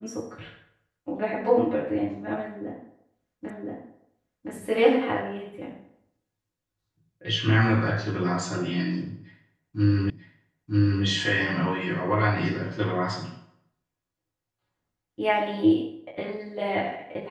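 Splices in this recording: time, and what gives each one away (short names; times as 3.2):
3.5 repeat of the last 1.02 s
10.1 repeat of the last 0.94 s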